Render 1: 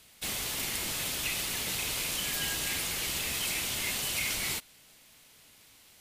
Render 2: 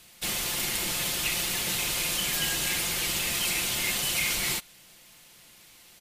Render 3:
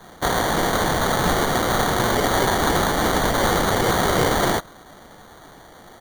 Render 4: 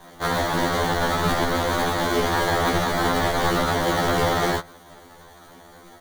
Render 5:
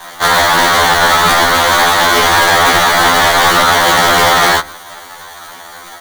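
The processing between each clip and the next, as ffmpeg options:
ffmpeg -i in.wav -af "aecho=1:1:5.7:0.43,volume=3.5dB" out.wav
ffmpeg -i in.wav -af "equalizer=frequency=760:width_type=o:width=0.41:gain=14.5,acrusher=samples=17:mix=1:aa=0.000001,volume=8.5dB" out.wav
ffmpeg -i in.wav -filter_complex "[0:a]acrossover=split=6100[link_01][link_02];[link_02]acompressor=threshold=-47dB:ratio=4:attack=1:release=60[link_03];[link_01][link_03]amix=inputs=2:normalize=0,acrusher=bits=2:mode=log:mix=0:aa=0.000001,afftfilt=real='re*2*eq(mod(b,4),0)':imag='im*2*eq(mod(b,4),0)':win_size=2048:overlap=0.75" out.wav
ffmpeg -i in.wav -filter_complex "[0:a]acrossover=split=760[link_01][link_02];[link_01]flanger=delay=7.7:depth=6.3:regen=89:speed=1.6:shape=triangular[link_03];[link_02]aeval=exprs='0.251*sin(PI/2*2.51*val(0)/0.251)':channel_layout=same[link_04];[link_03][link_04]amix=inputs=2:normalize=0,volume=7dB" out.wav

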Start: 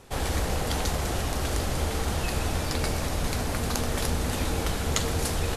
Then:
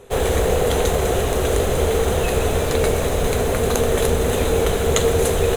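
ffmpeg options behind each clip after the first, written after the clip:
ffmpeg -i in.wav -filter_complex "[0:a]superequalizer=7b=3.55:8b=1.78:14b=0.316,asplit=2[link_01][link_02];[link_02]acrusher=bits=5:mix=0:aa=0.000001,volume=-5dB[link_03];[link_01][link_03]amix=inputs=2:normalize=0,volume=2.5dB" out.wav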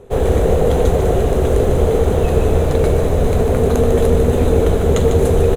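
ffmpeg -i in.wav -af "tiltshelf=frequency=970:gain=7,aecho=1:1:149:0.422,volume=-1dB" out.wav

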